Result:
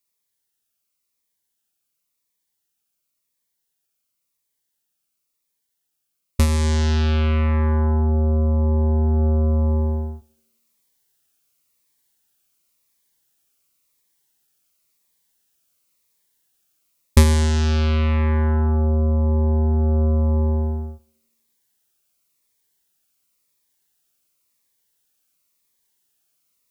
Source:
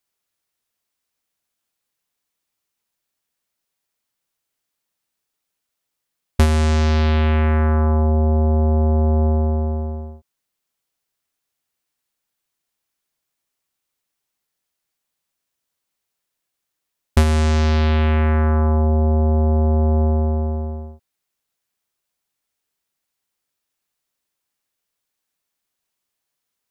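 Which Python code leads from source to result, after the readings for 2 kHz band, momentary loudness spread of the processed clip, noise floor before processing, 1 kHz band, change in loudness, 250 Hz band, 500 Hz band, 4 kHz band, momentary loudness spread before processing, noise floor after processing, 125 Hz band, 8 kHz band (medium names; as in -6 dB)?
-3.5 dB, 4 LU, -80 dBFS, -5.0 dB, -2.0 dB, -2.0 dB, -3.5 dB, 0.0 dB, 7 LU, -77 dBFS, -1.0 dB, no reading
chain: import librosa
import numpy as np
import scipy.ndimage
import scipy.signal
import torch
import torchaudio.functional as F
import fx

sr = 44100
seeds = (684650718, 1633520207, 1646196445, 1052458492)

p1 = fx.high_shelf(x, sr, hz=6100.0, db=7.0)
p2 = p1 + fx.echo_banded(p1, sr, ms=83, feedback_pct=64, hz=300.0, wet_db=-14, dry=0)
p3 = fx.rider(p2, sr, range_db=10, speed_s=0.5)
p4 = fx.notch(p3, sr, hz=690.0, q=17.0)
p5 = fx.notch_cascade(p4, sr, direction='falling', hz=0.94)
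y = F.gain(torch.from_numpy(p5), -1.0).numpy()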